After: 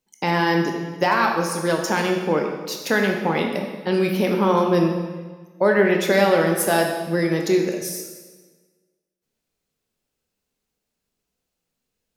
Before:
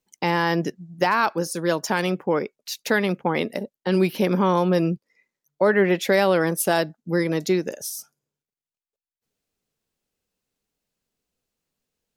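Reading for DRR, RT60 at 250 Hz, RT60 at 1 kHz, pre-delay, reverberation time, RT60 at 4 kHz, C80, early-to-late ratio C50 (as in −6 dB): 1.5 dB, 1.5 s, 1.4 s, 14 ms, 1.4 s, 1.2 s, 6.0 dB, 4.5 dB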